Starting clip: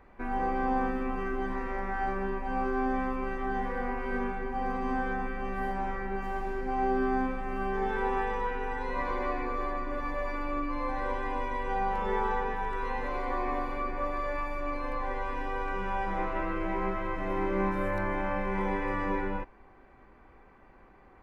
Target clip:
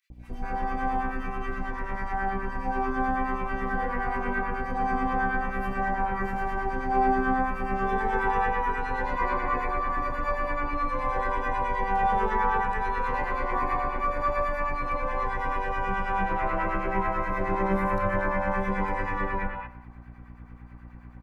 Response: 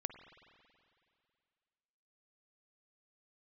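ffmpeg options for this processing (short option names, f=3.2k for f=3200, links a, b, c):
-filter_complex "[0:a]equalizer=f=310:w=1.2:g=-12.5,acrossover=split=120|1700[a][b][c];[b]dynaudnorm=f=260:g=21:m=6dB[d];[a][d][c]amix=inputs=3:normalize=0,aeval=exprs='val(0)+0.00398*(sin(2*PI*60*n/s)+sin(2*PI*2*60*n/s)/2+sin(2*PI*3*60*n/s)/3+sin(2*PI*4*60*n/s)/4+sin(2*PI*5*60*n/s)/5)':c=same,acrossover=split=1000[e][f];[e]aeval=exprs='val(0)*(1-0.7/2+0.7/2*cos(2*PI*9.3*n/s))':c=same[g];[f]aeval=exprs='val(0)*(1-0.7/2-0.7/2*cos(2*PI*9.3*n/s))':c=same[h];[g][h]amix=inputs=2:normalize=0,acrossover=split=630|3300[i][j][k];[i]adelay=100[l];[j]adelay=230[m];[l][m][k]amix=inputs=3:normalize=0,asplit=2[n][o];[1:a]atrim=start_sample=2205,afade=t=out:st=0.27:d=0.01,atrim=end_sample=12348[p];[o][p]afir=irnorm=-1:irlink=0,volume=6.5dB[q];[n][q]amix=inputs=2:normalize=0,volume=-1dB"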